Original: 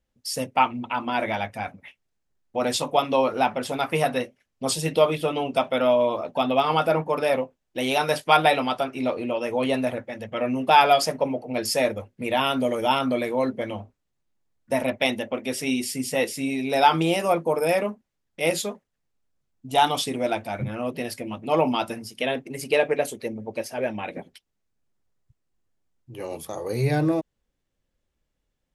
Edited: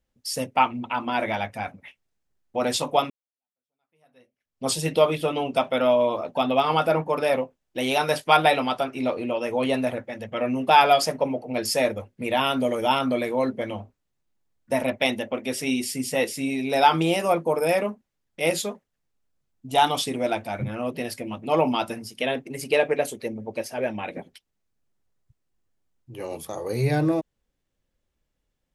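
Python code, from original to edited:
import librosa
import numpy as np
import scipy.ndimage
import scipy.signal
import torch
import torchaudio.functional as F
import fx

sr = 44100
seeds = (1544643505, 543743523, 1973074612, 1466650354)

y = fx.edit(x, sr, fx.fade_in_span(start_s=3.1, length_s=1.56, curve='exp'), tone=tone)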